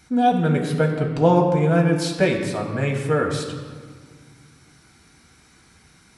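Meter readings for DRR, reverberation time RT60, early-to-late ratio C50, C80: 0.0 dB, 1.7 s, 5.5 dB, 7.0 dB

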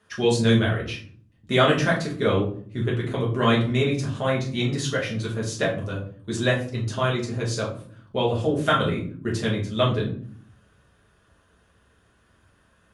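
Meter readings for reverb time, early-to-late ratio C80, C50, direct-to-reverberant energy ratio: not exponential, 12.5 dB, 7.5 dB, -4.5 dB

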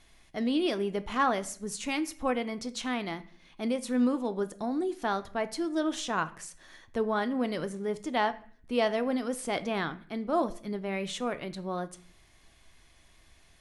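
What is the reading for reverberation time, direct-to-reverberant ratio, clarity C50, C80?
0.50 s, 11.5 dB, 17.0 dB, 21.0 dB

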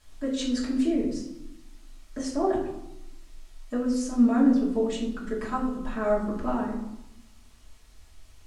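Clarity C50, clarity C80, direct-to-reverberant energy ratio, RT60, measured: 5.5 dB, 8.5 dB, -7.0 dB, 0.90 s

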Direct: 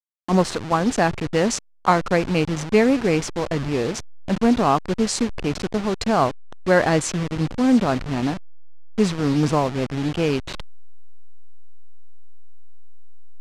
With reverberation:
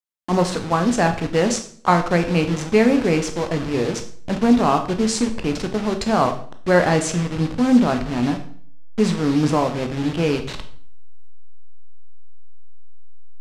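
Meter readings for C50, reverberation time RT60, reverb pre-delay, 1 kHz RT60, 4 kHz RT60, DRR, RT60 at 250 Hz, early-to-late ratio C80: 11.0 dB, 0.50 s, 14 ms, 0.50 s, 0.45 s, 6.0 dB, 0.65 s, 14.5 dB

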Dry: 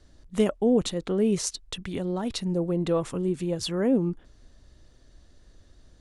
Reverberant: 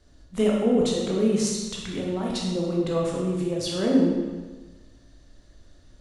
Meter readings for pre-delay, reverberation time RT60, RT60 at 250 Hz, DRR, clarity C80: 15 ms, 1.3 s, 1.3 s, -3.0 dB, 3.0 dB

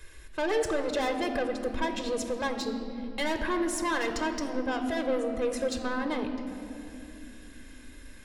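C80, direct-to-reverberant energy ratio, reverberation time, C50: 8.5 dB, 6.0 dB, 2.9 s, 7.5 dB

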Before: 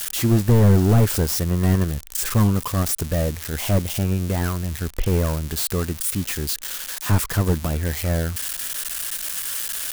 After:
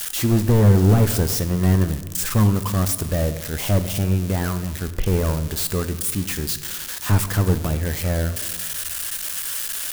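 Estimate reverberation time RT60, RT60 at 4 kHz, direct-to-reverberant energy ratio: 1.4 s, 0.90 s, 10.5 dB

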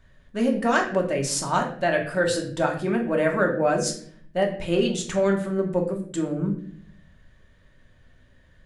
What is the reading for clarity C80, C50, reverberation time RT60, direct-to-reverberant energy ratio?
11.5 dB, 8.5 dB, 0.55 s, 0.0 dB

